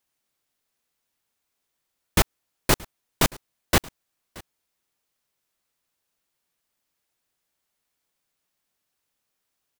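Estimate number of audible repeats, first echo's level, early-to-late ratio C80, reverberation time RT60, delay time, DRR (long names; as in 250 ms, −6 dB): 1, −23.0 dB, no reverb audible, no reverb audible, 626 ms, no reverb audible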